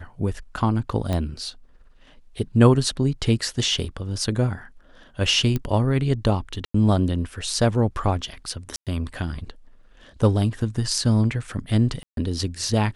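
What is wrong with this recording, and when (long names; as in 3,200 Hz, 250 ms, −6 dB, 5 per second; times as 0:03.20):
0:01.13: click −13 dBFS
0:05.56: click −12 dBFS
0:06.65–0:06.74: drop-out 94 ms
0:08.76–0:08.87: drop-out 107 ms
0:12.03–0:12.17: drop-out 142 ms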